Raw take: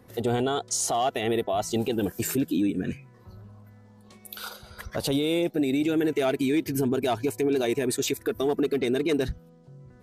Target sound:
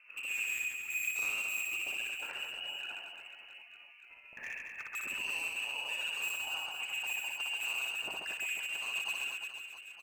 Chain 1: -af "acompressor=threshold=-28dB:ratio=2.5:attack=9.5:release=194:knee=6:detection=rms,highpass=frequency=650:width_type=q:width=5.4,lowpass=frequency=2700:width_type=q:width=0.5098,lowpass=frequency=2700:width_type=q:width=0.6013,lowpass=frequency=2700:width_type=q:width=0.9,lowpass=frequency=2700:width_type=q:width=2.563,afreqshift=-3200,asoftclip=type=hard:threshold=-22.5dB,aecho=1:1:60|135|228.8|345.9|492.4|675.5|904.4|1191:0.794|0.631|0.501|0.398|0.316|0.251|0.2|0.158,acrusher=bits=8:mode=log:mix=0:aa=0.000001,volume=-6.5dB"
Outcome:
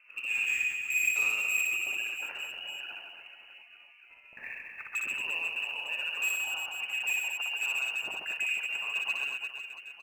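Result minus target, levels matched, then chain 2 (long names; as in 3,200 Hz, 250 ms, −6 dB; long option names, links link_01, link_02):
hard clipping: distortion −5 dB
-af "acompressor=threshold=-28dB:ratio=2.5:attack=9.5:release=194:knee=6:detection=rms,highpass=frequency=650:width_type=q:width=5.4,lowpass=frequency=2700:width_type=q:width=0.5098,lowpass=frequency=2700:width_type=q:width=0.6013,lowpass=frequency=2700:width_type=q:width=0.9,lowpass=frequency=2700:width_type=q:width=2.563,afreqshift=-3200,asoftclip=type=hard:threshold=-31dB,aecho=1:1:60|135|228.8|345.9|492.4|675.5|904.4|1191:0.794|0.631|0.501|0.398|0.316|0.251|0.2|0.158,acrusher=bits=8:mode=log:mix=0:aa=0.000001,volume=-6.5dB"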